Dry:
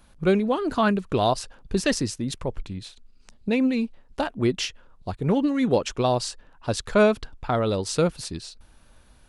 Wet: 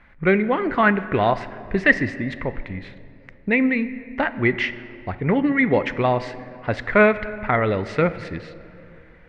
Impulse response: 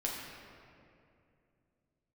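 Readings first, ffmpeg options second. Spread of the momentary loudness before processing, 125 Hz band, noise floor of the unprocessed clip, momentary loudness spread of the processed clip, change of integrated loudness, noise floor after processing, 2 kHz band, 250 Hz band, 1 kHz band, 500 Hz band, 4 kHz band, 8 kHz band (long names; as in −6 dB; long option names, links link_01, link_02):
14 LU, +2.0 dB, −55 dBFS, 16 LU, +3.5 dB, −48 dBFS, +12.0 dB, +2.0 dB, +4.0 dB, +2.5 dB, −5.0 dB, below −15 dB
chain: -filter_complex "[0:a]lowpass=frequency=2000:width_type=q:width=8.8,asplit=2[link_01][link_02];[1:a]atrim=start_sample=2205[link_03];[link_02][link_03]afir=irnorm=-1:irlink=0,volume=-13dB[link_04];[link_01][link_04]amix=inputs=2:normalize=0"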